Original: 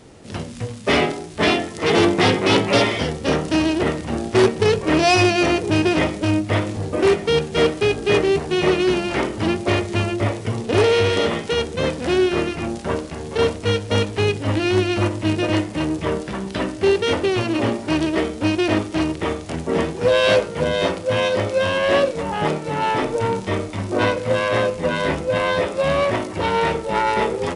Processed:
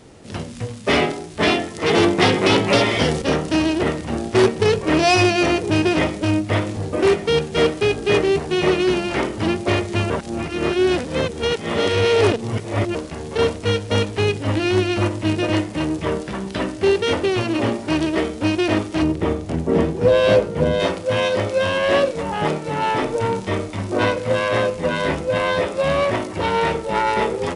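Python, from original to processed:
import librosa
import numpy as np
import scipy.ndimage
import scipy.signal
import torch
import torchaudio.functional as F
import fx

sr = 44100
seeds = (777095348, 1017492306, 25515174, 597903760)

y = fx.band_squash(x, sr, depth_pct=100, at=(2.22, 3.22))
y = fx.tilt_shelf(y, sr, db=5.5, hz=750.0, at=(19.02, 20.8))
y = fx.edit(y, sr, fx.reverse_span(start_s=10.1, length_s=2.85), tone=tone)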